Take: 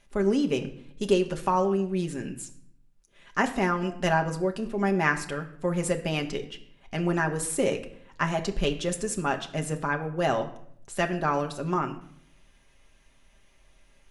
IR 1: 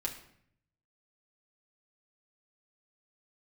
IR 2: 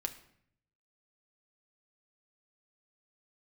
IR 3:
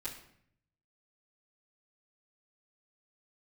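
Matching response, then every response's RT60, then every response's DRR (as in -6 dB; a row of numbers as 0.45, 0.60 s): 2; 0.65, 0.65, 0.65 s; -2.5, 4.0, -11.5 dB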